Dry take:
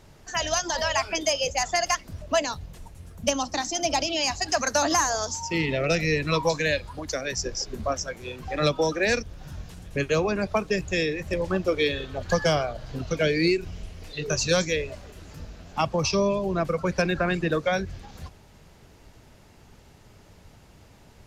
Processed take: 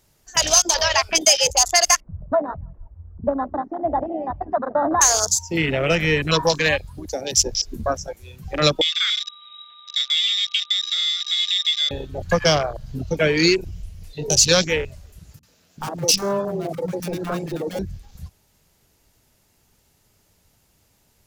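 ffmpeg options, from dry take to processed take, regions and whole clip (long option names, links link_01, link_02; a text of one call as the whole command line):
ffmpeg -i in.wav -filter_complex "[0:a]asettb=1/sr,asplit=3[link_01][link_02][link_03];[link_01]atrim=end=2.004[link_04];[link_02]atrim=start=2:end=5.01,asetpts=PTS-STARTPTS,afade=type=in:duration=0.004:curve=qsin,afade=type=out:start_time=3.006:duration=0.004:curve=qsin,lowpass=frequency=1200:width=0.5412,lowpass=frequency=1200:width=1.3066,aecho=1:1:164|328|492:0.119|0.0464|0.0181,atrim=end_sample=132741[link_05];[link_03]atrim=start=5.006[link_06];[link_04][link_05]acrossfade=duration=0.004:curve1=hsin:curve2=qsin[link_07];[link_07][link_06]acrossfade=duration=0.004:curve1=qsin:curve2=hsin,asettb=1/sr,asplit=3[link_08][link_09][link_10];[link_08]atrim=end=8.814[link_11];[link_09]atrim=start=8.81:end=11.91,asetpts=PTS-STARTPTS,afade=type=in:duration=0.004:curve=qsin,afade=type=out:start_time=3.096:duration=0.004:curve=qsin,aeval=exprs='val(0)+0.0141*sin(2*PI*2700*n/s)':channel_layout=same,lowpass=frequency=3300:width_type=q:width=0.5098,lowpass=frequency=3300:width_type=q:width=0.6013,lowpass=frequency=3300:width_type=q:width=0.9,lowpass=frequency=3300:width_type=q:width=2.563,afreqshift=-3900,acompressor=threshold=-28dB:ratio=2.5:attack=3.2:release=140:knee=1:detection=peak[link_12];[link_10]atrim=start=11.906[link_13];[link_11][link_12]acrossfade=duration=0.004:curve1=hsin:curve2=qsin[link_14];[link_14][link_13]acrossfade=duration=0.004:curve1=qsin:curve2=hsin,asettb=1/sr,asplit=3[link_15][link_16][link_17];[link_15]atrim=end=15.394[link_18];[link_16]atrim=start=15.39:end=17.79,asetpts=PTS-STARTPTS,afade=type=in:duration=0.004:curve=qsin,afade=type=out:start_time=2.396:duration=0.004:curve=qsin,highpass=150,aeval=exprs='0.0891*(abs(mod(val(0)/0.0891+3,4)-2)-1)':channel_layout=same,acrossover=split=240|800[link_19][link_20][link_21];[link_21]adelay=40[link_22];[link_20]adelay=90[link_23];[link_19][link_23][link_22]amix=inputs=3:normalize=0,atrim=end_sample=105840[link_24];[link_17]atrim=start=17.786[link_25];[link_18][link_24]acrossfade=duration=0.004:curve1=hsin:curve2=qsin[link_26];[link_26][link_25]acrossfade=duration=0.004:curve1=qsin:curve2=hsin,aemphasis=mode=production:type=75fm,afwtdn=0.0447,volume=5dB" out.wav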